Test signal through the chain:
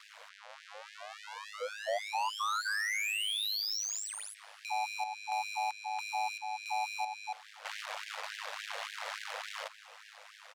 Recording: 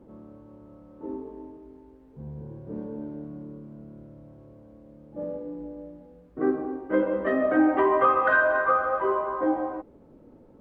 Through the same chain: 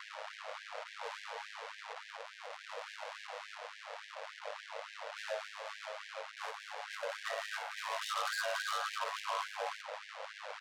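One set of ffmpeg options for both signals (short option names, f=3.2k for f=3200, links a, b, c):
-af "aeval=exprs='val(0)+0.5*0.0316*sgn(val(0))':c=same,aeval=exprs='val(0)*sin(2*PI*52*n/s)':c=same,aecho=1:1:265:0.106,adynamicsmooth=sensitivity=3:basefreq=1.3k,bandreject=f=60:t=h:w=6,bandreject=f=120:t=h:w=6,bandreject=f=180:t=h:w=6,bandreject=f=240:t=h:w=6,bandreject=f=300:t=h:w=6,bandreject=f=360:t=h:w=6,bandreject=f=420:t=h:w=6,asoftclip=type=tanh:threshold=-24.5dB,highshelf=f=2.4k:g=9.5,alimiter=level_in=3dB:limit=-24dB:level=0:latency=1:release=440,volume=-3dB,afftfilt=real='re*gte(b*sr/1024,440*pow(1600/440,0.5+0.5*sin(2*PI*3.5*pts/sr)))':imag='im*gte(b*sr/1024,440*pow(1600/440,0.5+0.5*sin(2*PI*3.5*pts/sr)))':win_size=1024:overlap=0.75"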